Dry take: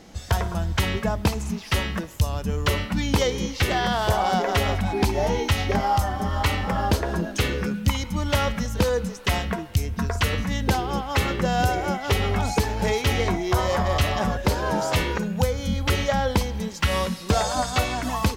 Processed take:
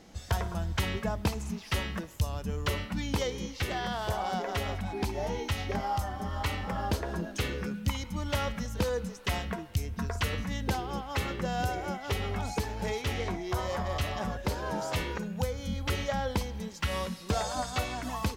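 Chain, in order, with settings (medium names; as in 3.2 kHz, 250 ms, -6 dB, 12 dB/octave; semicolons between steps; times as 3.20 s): gain riding 2 s; 12.96–13.49 s: loudspeaker Doppler distortion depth 0.18 ms; trim -9 dB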